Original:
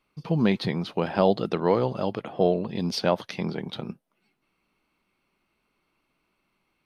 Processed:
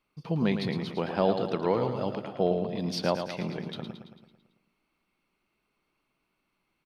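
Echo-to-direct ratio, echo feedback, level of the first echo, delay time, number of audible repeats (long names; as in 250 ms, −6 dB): −6.5 dB, 56%, −8.0 dB, 111 ms, 6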